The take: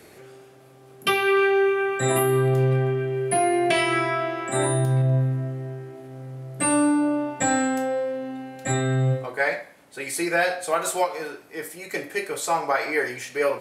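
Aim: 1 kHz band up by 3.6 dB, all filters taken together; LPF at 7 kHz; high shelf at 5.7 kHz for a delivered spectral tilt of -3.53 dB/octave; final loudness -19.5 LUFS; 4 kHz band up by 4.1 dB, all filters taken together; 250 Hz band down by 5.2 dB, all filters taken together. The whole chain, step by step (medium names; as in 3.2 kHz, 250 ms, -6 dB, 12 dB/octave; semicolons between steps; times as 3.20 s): low-pass 7 kHz; peaking EQ 250 Hz -8.5 dB; peaking EQ 1 kHz +5.5 dB; peaking EQ 4 kHz +7 dB; treble shelf 5.7 kHz -5 dB; trim +3.5 dB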